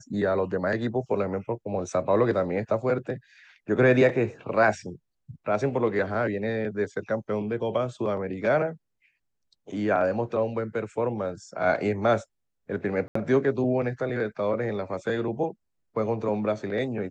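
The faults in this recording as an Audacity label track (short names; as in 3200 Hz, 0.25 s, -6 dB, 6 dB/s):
13.080000	13.150000	gap 74 ms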